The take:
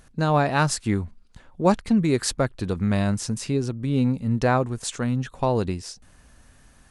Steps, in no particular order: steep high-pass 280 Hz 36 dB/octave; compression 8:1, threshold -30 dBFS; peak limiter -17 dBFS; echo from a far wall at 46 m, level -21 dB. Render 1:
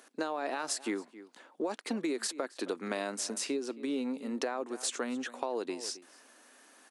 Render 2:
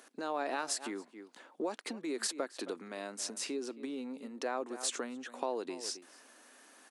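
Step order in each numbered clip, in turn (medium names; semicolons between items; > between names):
steep high-pass > peak limiter > echo from a far wall > compression; echo from a far wall > peak limiter > compression > steep high-pass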